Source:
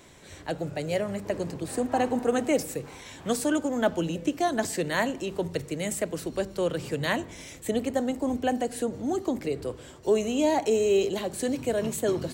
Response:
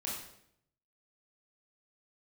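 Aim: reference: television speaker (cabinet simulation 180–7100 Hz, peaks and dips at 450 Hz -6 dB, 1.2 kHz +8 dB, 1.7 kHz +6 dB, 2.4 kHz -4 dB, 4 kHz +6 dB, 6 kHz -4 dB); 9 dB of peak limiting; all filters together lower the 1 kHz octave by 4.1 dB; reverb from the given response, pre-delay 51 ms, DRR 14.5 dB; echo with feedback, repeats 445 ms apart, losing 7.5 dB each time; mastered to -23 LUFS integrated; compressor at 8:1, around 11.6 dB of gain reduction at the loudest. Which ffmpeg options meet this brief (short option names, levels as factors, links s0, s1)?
-filter_complex "[0:a]equalizer=f=1000:t=o:g=-8,acompressor=threshold=0.0251:ratio=8,alimiter=level_in=1.78:limit=0.0631:level=0:latency=1,volume=0.562,aecho=1:1:445|890|1335|1780|2225:0.422|0.177|0.0744|0.0312|0.0131,asplit=2[s0][s1];[1:a]atrim=start_sample=2205,adelay=51[s2];[s1][s2]afir=irnorm=-1:irlink=0,volume=0.15[s3];[s0][s3]amix=inputs=2:normalize=0,highpass=f=180:w=0.5412,highpass=f=180:w=1.3066,equalizer=f=450:t=q:w=4:g=-6,equalizer=f=1200:t=q:w=4:g=8,equalizer=f=1700:t=q:w=4:g=6,equalizer=f=2400:t=q:w=4:g=-4,equalizer=f=4000:t=q:w=4:g=6,equalizer=f=6000:t=q:w=4:g=-4,lowpass=f=7100:w=0.5412,lowpass=f=7100:w=1.3066,volume=6.68"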